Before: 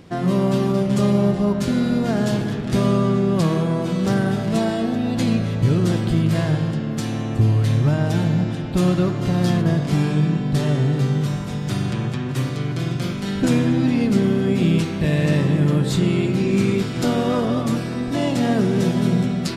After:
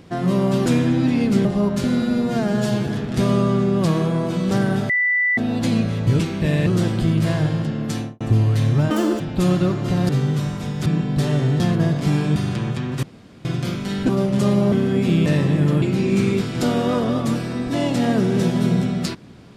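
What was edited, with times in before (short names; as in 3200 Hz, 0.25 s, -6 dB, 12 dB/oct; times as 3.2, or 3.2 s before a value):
0.66–1.29 swap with 13.46–14.25
1.86–2.43 stretch 1.5×
4.45–4.93 bleep 1980 Hz -15.5 dBFS
7.04–7.29 studio fade out
7.99–8.57 speed 197%
9.46–10.22 swap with 10.96–11.73
12.4–12.82 room tone
14.79–15.26 move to 5.75
15.82–16.23 cut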